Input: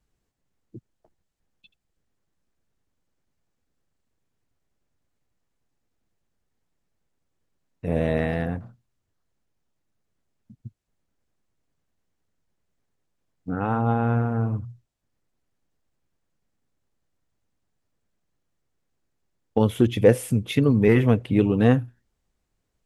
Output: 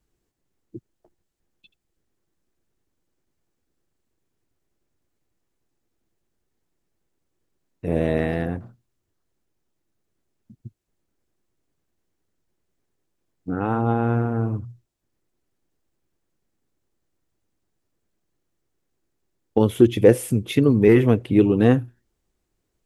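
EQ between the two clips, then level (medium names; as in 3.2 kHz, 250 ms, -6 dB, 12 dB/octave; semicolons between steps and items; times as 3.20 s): peaking EQ 350 Hz +8 dB 0.5 oct; treble shelf 7.7 kHz +4.5 dB; 0.0 dB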